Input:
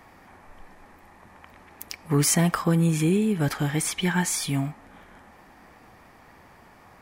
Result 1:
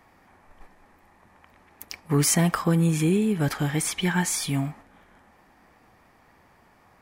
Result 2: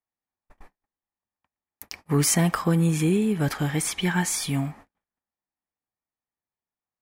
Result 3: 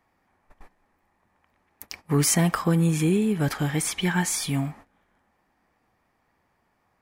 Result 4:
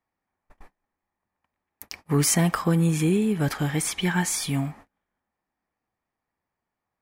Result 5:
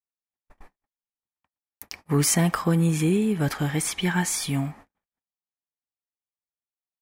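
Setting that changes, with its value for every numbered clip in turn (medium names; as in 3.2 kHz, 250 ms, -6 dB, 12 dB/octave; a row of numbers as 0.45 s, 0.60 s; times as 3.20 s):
gate, range: -6 dB, -46 dB, -18 dB, -33 dB, -59 dB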